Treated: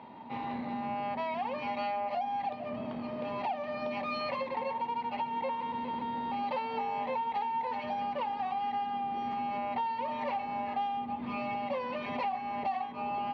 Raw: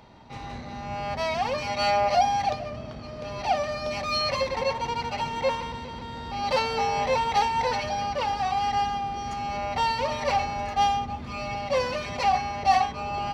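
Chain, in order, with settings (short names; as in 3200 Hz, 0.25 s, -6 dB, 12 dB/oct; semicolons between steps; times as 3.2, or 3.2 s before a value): speaker cabinet 190–3200 Hz, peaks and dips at 240 Hz +9 dB, 930 Hz +8 dB, 1400 Hz -5 dB; compressor 6:1, threshold -32 dBFS, peak gain reduction 17.5 dB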